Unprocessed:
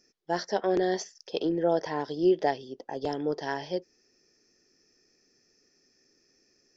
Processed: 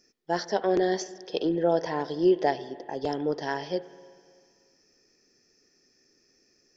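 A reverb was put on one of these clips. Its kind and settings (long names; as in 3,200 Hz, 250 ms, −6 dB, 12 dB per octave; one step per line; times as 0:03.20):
spring reverb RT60 2 s, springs 48/52 ms, chirp 35 ms, DRR 15.5 dB
level +1.5 dB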